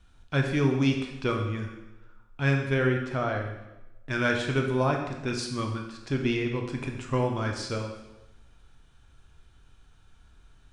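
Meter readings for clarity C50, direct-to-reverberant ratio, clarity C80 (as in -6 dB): 5.5 dB, 2.0 dB, 7.5 dB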